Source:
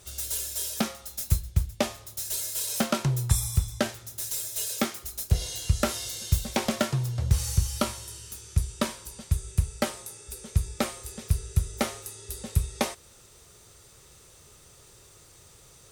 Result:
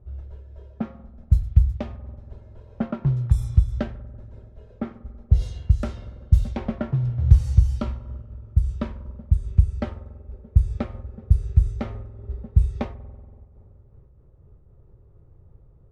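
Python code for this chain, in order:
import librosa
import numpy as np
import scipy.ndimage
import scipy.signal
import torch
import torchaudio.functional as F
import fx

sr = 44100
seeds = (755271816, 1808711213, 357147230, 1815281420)

y = fx.riaa(x, sr, side='playback')
y = fx.rev_spring(y, sr, rt60_s=2.9, pass_ms=(47,), chirp_ms=25, drr_db=15.0)
y = fx.env_lowpass(y, sr, base_hz=750.0, full_db=-7.0)
y = fx.am_noise(y, sr, seeds[0], hz=5.7, depth_pct=60)
y = y * 10.0 ** (-4.0 / 20.0)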